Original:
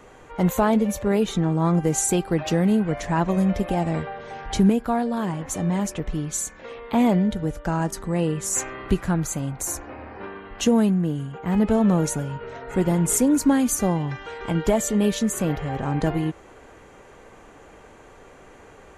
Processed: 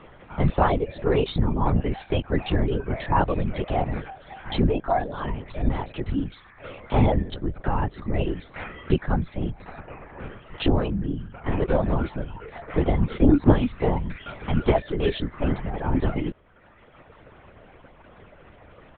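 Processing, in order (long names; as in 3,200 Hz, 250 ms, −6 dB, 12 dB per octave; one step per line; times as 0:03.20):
reverb reduction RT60 1.6 s
comb filter 7.2 ms, depth 68%
linear-prediction vocoder at 8 kHz whisper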